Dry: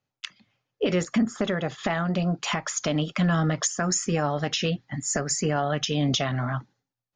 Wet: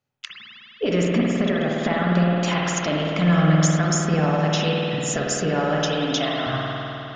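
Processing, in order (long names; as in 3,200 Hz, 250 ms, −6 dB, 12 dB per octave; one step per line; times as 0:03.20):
0:05.78–0:06.47: high-pass filter 310 Hz 12 dB per octave
spring reverb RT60 3.4 s, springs 51 ms, chirp 60 ms, DRR −3.5 dB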